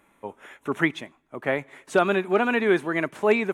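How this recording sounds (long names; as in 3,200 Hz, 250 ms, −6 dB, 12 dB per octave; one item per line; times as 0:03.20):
background noise floor −64 dBFS
spectral slope −4.0 dB per octave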